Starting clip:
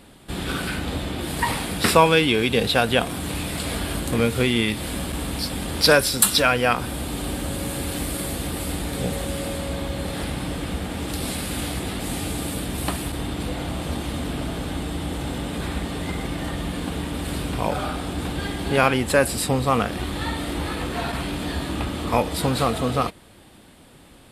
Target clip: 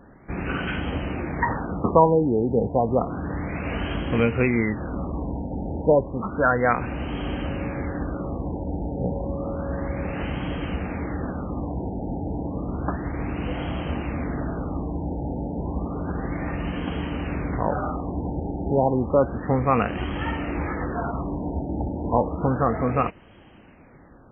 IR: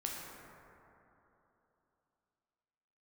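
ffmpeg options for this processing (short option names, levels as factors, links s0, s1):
-af "afftfilt=real='re*lt(b*sr/1024,910*pow(3300/910,0.5+0.5*sin(2*PI*0.31*pts/sr)))':imag='im*lt(b*sr/1024,910*pow(3300/910,0.5+0.5*sin(2*PI*0.31*pts/sr)))':win_size=1024:overlap=0.75"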